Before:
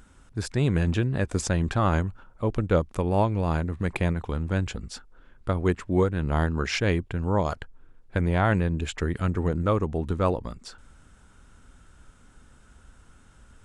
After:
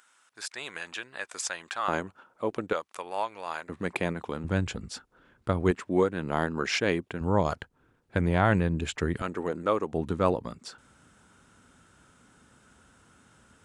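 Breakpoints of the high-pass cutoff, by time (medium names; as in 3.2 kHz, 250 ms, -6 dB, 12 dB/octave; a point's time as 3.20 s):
1.1 kHz
from 1.88 s 320 Hz
from 2.73 s 940 Hz
from 3.69 s 230 Hz
from 4.44 s 94 Hz
from 5.71 s 220 Hz
from 7.21 s 94 Hz
from 9.22 s 330 Hz
from 9.93 s 130 Hz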